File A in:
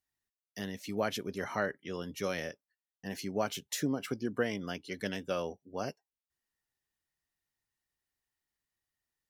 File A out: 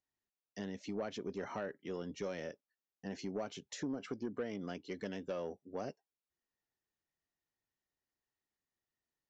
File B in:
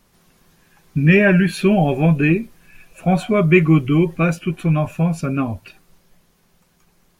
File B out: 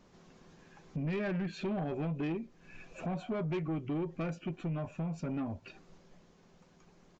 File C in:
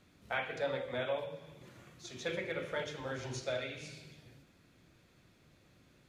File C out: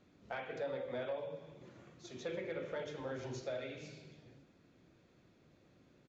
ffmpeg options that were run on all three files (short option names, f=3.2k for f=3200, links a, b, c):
-af "acompressor=threshold=-36dB:ratio=2.5,equalizer=f=370:t=o:w=3:g=8.5,aresample=16000,asoftclip=type=tanh:threshold=-23dB,aresample=44100,volume=-7dB"